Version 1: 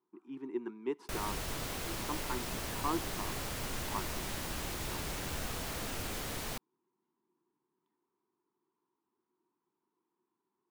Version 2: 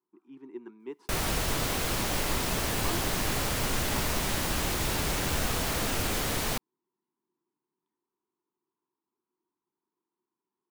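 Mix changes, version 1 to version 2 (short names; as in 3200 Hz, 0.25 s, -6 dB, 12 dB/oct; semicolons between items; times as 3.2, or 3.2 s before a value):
speech -4.5 dB; background +9.5 dB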